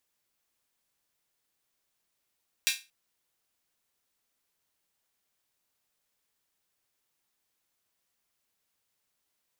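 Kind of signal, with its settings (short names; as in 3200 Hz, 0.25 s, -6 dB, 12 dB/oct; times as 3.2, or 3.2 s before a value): open hi-hat length 0.23 s, high-pass 2500 Hz, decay 0.27 s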